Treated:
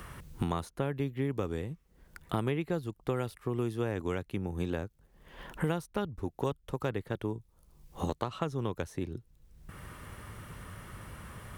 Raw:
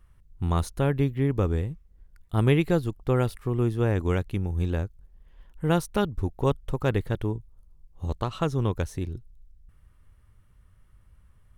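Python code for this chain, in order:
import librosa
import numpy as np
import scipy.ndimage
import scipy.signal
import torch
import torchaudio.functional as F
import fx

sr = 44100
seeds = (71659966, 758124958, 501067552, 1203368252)

y = fx.highpass(x, sr, hz=180.0, slope=6)
y = fx.band_squash(y, sr, depth_pct=100)
y = y * 10.0 ** (-6.0 / 20.0)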